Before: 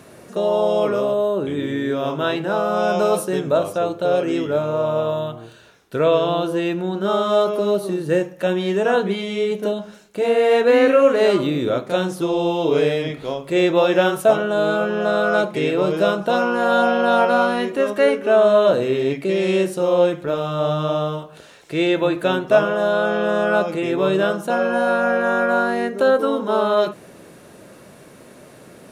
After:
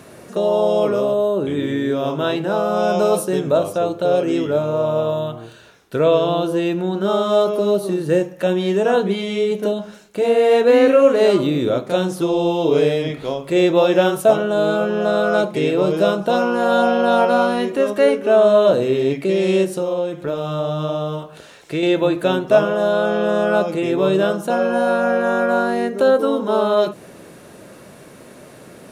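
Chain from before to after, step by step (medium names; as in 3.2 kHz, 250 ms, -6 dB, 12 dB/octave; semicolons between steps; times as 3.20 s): dynamic bell 1.7 kHz, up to -5 dB, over -32 dBFS, Q 0.8; 19.64–21.83 s: compression 6:1, threshold -21 dBFS, peak gain reduction 9 dB; trim +2.5 dB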